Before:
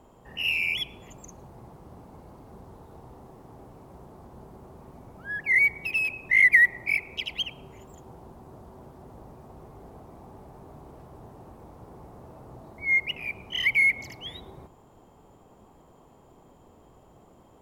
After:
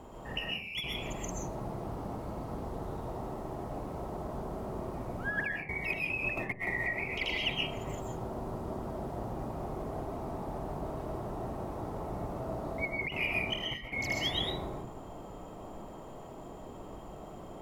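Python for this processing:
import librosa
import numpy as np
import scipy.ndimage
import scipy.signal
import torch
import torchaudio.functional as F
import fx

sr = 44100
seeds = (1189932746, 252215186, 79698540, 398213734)

y = fx.high_shelf(x, sr, hz=8500.0, db=-4.5)
y = fx.over_compress(y, sr, threshold_db=-35.0, ratio=-0.5)
y = fx.rev_freeverb(y, sr, rt60_s=0.55, hf_ratio=0.35, predelay_ms=90, drr_db=-1.5)
y = fx.band_squash(y, sr, depth_pct=100, at=(6.37, 7.05))
y = F.gain(torch.from_numpy(y), -2.0).numpy()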